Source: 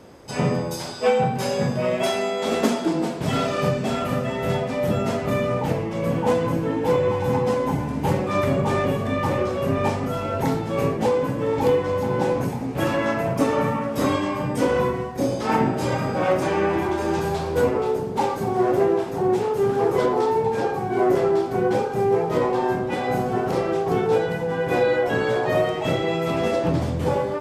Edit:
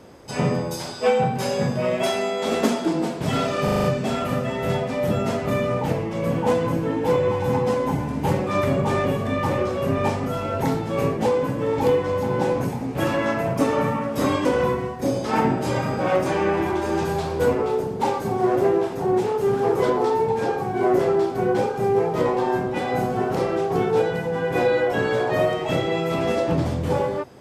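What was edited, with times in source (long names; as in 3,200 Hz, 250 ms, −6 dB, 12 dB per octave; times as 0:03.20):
0:03.64: stutter 0.04 s, 6 plays
0:14.25–0:14.61: remove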